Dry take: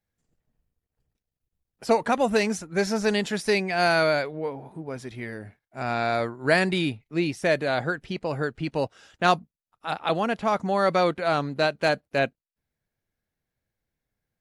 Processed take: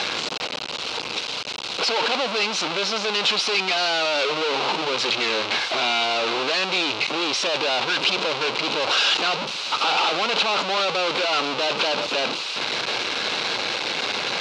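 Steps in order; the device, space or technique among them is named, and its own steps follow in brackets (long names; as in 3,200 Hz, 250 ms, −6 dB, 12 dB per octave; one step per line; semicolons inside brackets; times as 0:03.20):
home computer beeper (sign of each sample alone; loudspeaker in its box 540–5,000 Hz, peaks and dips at 670 Hz −5 dB, 1,800 Hz −10 dB, 2,700 Hz +5 dB, 4,000 Hz +6 dB)
level +8.5 dB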